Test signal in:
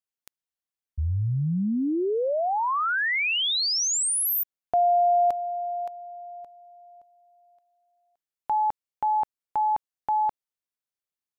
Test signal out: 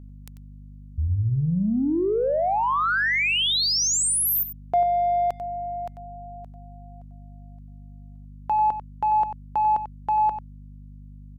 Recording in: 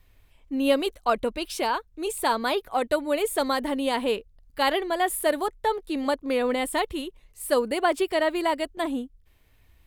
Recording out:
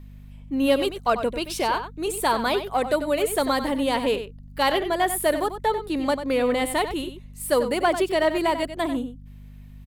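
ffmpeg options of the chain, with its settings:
ffmpeg -i in.wav -filter_complex "[0:a]asplit=2[link_01][link_02];[link_02]asoftclip=type=tanh:threshold=-23dB,volume=-9dB[link_03];[link_01][link_03]amix=inputs=2:normalize=0,aeval=exprs='val(0)+0.00891*(sin(2*PI*50*n/s)+sin(2*PI*2*50*n/s)/2+sin(2*PI*3*50*n/s)/3+sin(2*PI*4*50*n/s)/4+sin(2*PI*5*50*n/s)/5)':channel_layout=same,asplit=2[link_04][link_05];[link_05]adelay=93.29,volume=-10dB,highshelf=frequency=4000:gain=-2.1[link_06];[link_04][link_06]amix=inputs=2:normalize=0" out.wav

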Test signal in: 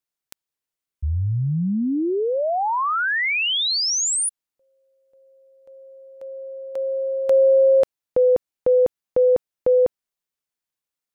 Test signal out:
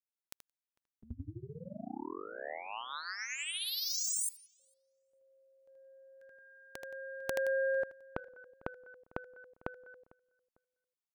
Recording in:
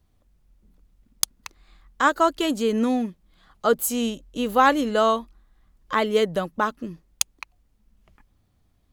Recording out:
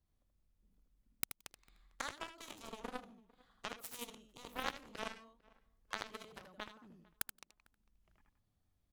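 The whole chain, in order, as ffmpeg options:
ffmpeg -i in.wav -filter_complex "[0:a]acompressor=threshold=-34dB:ratio=3:attack=6.1:release=640:knee=1:detection=peak,highshelf=frequency=3500:gain=3,acontrast=21,aeval=exprs='(mod(5.01*val(0)+1,2)-1)/5.01':channel_layout=same,asplit=2[link_01][link_02];[link_02]aecho=0:1:78.72|172:0.708|0.251[link_03];[link_01][link_03]amix=inputs=2:normalize=0,aeval=exprs='0.282*(cos(1*acos(clip(val(0)/0.282,-1,1)))-cos(1*PI/2))+0.1*(cos(3*acos(clip(val(0)/0.282,-1,1)))-cos(3*PI/2))':channel_layout=same,asplit=2[link_04][link_05];[link_05]adelay=450,lowpass=frequency=1900:poles=1,volume=-23.5dB,asplit=2[link_06][link_07];[link_07]adelay=450,lowpass=frequency=1900:poles=1,volume=0.29[link_08];[link_06][link_08]amix=inputs=2:normalize=0[link_09];[link_04][link_09]amix=inputs=2:normalize=0,volume=2dB" out.wav

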